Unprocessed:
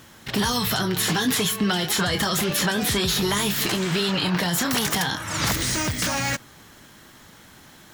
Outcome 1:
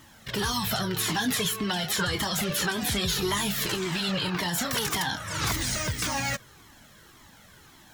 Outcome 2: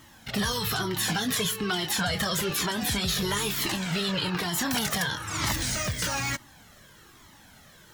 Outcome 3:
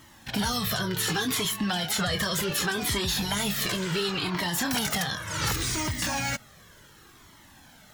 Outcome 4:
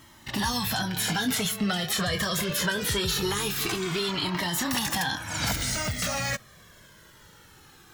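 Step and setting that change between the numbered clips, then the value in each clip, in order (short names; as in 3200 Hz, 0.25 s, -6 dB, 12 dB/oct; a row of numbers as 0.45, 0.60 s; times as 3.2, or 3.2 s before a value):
cascading flanger, rate: 1.8, 1.1, 0.68, 0.23 Hz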